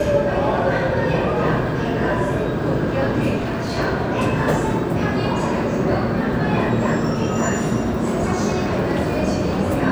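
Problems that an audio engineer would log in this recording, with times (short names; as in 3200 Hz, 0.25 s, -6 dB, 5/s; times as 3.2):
3.36–3.79 clipped -20 dBFS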